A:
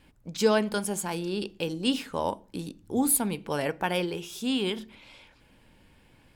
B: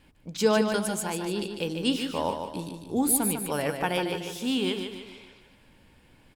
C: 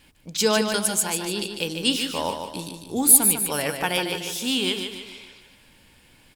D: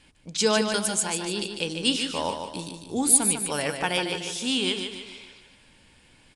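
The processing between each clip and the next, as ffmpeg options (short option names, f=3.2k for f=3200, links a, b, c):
-af "aecho=1:1:149|298|447|596|745:0.473|0.213|0.0958|0.0431|0.0194"
-af "highshelf=f=2.1k:g=11.5"
-af "aresample=22050,aresample=44100,volume=-1.5dB"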